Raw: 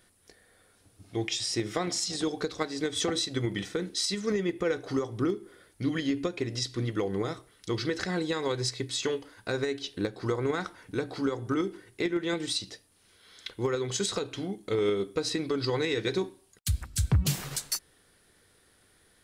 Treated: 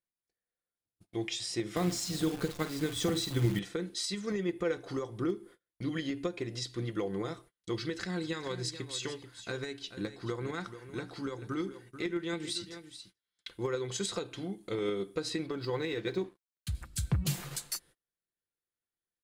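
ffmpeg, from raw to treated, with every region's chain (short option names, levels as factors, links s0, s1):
-filter_complex "[0:a]asettb=1/sr,asplit=3[s0][s1][s2];[s0]atrim=end=1.764[s3];[s1]atrim=start=1.76:end=3.59,asetpts=PTS-STARTPTS,afade=t=in:d=0.004:c=qsin,afade=t=out:st=1.826:d=0.004:c=qsin,bass=f=250:g=10,treble=f=4000:g=0,asplit=2[s4][s5];[s5]adelay=50,volume=0.251[s6];[s4][s6]amix=inputs=2:normalize=0,atrim=end_sample=80703,acrusher=bits=7:dc=4:mix=0:aa=0.000001[s7];[s2]atrim=start=3.586[s8];[s3][s7]acrossfade=d=0.004:c1=hsin:c2=qsin[s9];[s9][s8]acrossfade=d=0.004:c1=qsin:c2=hsin,asettb=1/sr,asplit=3[s10][s11][s12];[s10]atrim=end=7.794[s13];[s11]atrim=start=7.79:end=13.58,asetpts=PTS-STARTPTS,afade=t=in:d=0.004:c=qsin,afade=t=out:st=5.786:d=0.004:c=qsin,equalizer=f=600:w=0.92:g=-5,aecho=1:1:436:0.251,atrim=end_sample=255339[s14];[s12]atrim=start=13.576[s15];[s13][s14]acrossfade=d=0.004:c1=hsin:c2=qsin[s16];[s16][s15]acrossfade=d=0.004:c1=qsin:c2=hsin,asettb=1/sr,asplit=3[s17][s18][s19];[s17]atrim=end=15.464[s20];[s18]atrim=start=15.46:end=16.75,asetpts=PTS-STARTPTS,afade=t=in:d=0.004:c=qsin,afade=t=out:st=1.286:d=0.004:c=qsin,lowpass=f=3300:p=1,aeval=exprs='sgn(val(0))*max(abs(val(0))-0.00188,0)':c=same[s21];[s19]atrim=start=16.746[s22];[s20][s21]acrossfade=d=0.004:c1=hsin:c2=qsin[s23];[s23][s22]acrossfade=d=0.004:c1=qsin:c2=hsin,agate=range=0.0282:threshold=0.00355:ratio=16:detection=peak,equalizer=f=5600:w=4.5:g=-3.5,aecho=1:1:5.8:0.33,volume=0.562"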